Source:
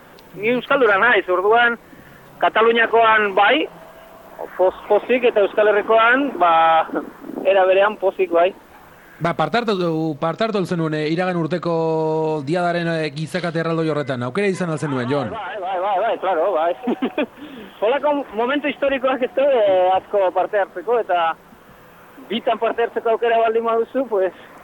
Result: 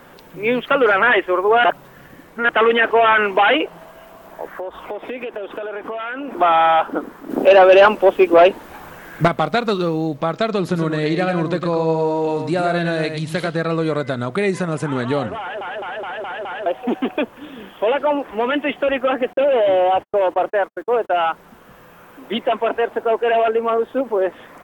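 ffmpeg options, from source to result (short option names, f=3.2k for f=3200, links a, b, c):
-filter_complex "[0:a]asettb=1/sr,asplit=3[a][b][c];[a]atrim=end=4.464[d];[b]atrim=start=4.46:end=6.36,asetpts=PTS-STARTPTS,afade=t=in:d=0.004:c=qsin,afade=t=out:st=1.896:d=0.004:c=qsin,acompressor=threshold=-24dB:ratio=12:attack=3.2:release=140:knee=1:detection=peak[e];[c]atrim=start=6.356[f];[d][e]acrossfade=d=0.004:c1=hsin:c2=qsin[g];[g][f]acrossfade=d=0.004:c1=qsin:c2=hsin,asettb=1/sr,asplit=3[h][i][j];[h]atrim=end=7.304[k];[i]atrim=start=7.3:end=9.28,asetpts=PTS-STARTPTS,afade=t=in:d=0.004:c=qsin,afade=t=out:st=1.976:d=0.004:c=qsin,acontrast=77[l];[j]atrim=start=9.276[m];[k][l]acrossfade=d=0.004:c1=hsin:c2=qsin[n];[n][m]acrossfade=d=0.004:c1=qsin:c2=hsin,asplit=3[o][p][q];[o]afade=t=out:st=10.7:d=0.02[r];[p]aecho=1:1:105:0.447,afade=t=in:st=10.7:d=0.02,afade=t=out:st=13.47:d=0.02[s];[q]afade=t=in:st=13.47:d=0.02[t];[r][s][t]amix=inputs=3:normalize=0,asettb=1/sr,asplit=3[u][v][w];[u]atrim=end=19.334[x];[v]atrim=start=19.33:end=21.2,asetpts=PTS-STARTPTS,afade=t=in:d=0.004:c=qsin,afade=t=out:st=1.866:d=0.004:c=qsin,agate=range=-55dB:threshold=-31dB:ratio=16:release=100:detection=peak[y];[w]atrim=start=21.196[z];[x][y]acrossfade=d=0.004:c1=hsin:c2=qsin[aa];[aa][z]acrossfade=d=0.004:c1=qsin:c2=hsin,asplit=9[ab][ac][ad][ae][af][ag][ah][ai][aj];[ab]atrim=end=1.642[ak];[ac]atrim=start=1.638:end=2.492,asetpts=PTS-STARTPTS,areverse[al];[ad]atrim=start=2.488:end=15.612[am];[ae]atrim=start=15.398:end=15.612[an];[af]atrim=start=15.398:end=15.612[ao];[ag]atrim=start=15.398:end=15.612[ap];[ah]atrim=start=15.398:end=15.612[aq];[ai]atrim=start=15.398:end=15.612[ar];[aj]atrim=start=16.658[as];[ak][al]acrossfade=d=0.004:c1=hsin:c2=hsin[at];[at][am]acrossfade=d=0.004:c1=hsin:c2=hsin[au];[au][an]acrossfade=d=0.004:c1=hsin:c2=hsin[av];[av][ao]acrossfade=d=0.004:c1=hsin:c2=hsin[aw];[aw][ap]acrossfade=d=0.004:c1=hsin:c2=hsin[ax];[ax][aq]acrossfade=d=0.004:c1=hsin:c2=hsin[ay];[ay][ar]acrossfade=d=0.004:c1=hsin:c2=hsin[az];[az][as]acrossfade=d=0.004:c1=hsin:c2=hsin"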